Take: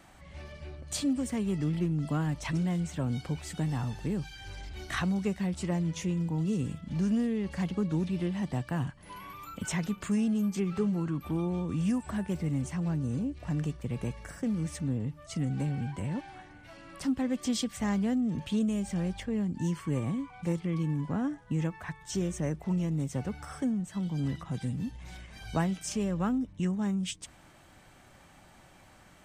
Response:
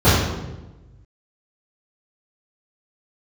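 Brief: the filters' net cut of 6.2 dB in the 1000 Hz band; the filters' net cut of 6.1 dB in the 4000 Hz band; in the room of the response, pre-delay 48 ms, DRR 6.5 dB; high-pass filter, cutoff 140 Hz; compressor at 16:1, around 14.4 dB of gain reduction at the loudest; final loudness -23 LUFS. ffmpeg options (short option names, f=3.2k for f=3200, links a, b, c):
-filter_complex "[0:a]highpass=140,equalizer=f=1k:t=o:g=-8,equalizer=f=4k:t=o:g=-8,acompressor=threshold=-40dB:ratio=16,asplit=2[a][b];[1:a]atrim=start_sample=2205,adelay=48[c];[b][c]afir=irnorm=-1:irlink=0,volume=-32dB[d];[a][d]amix=inputs=2:normalize=0,volume=17.5dB"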